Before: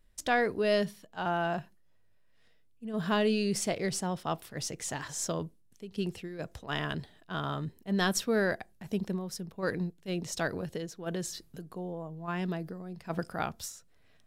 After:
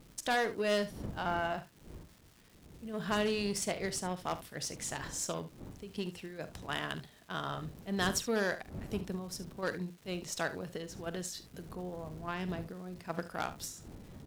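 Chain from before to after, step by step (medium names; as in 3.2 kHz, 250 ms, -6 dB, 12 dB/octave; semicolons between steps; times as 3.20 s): one-sided wavefolder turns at -21.5 dBFS; wind noise 200 Hz -45 dBFS; bass shelf 390 Hz -4.5 dB; in parallel at +2.5 dB: compression, threshold -43 dBFS, peak gain reduction 17 dB; on the sum: Chebyshev shaper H 7 -26 dB, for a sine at -15 dBFS; crackle 580 per s -47 dBFS; on a send: early reflections 44 ms -15 dB, 72 ms -15 dB; on the sum: trim -3.5 dB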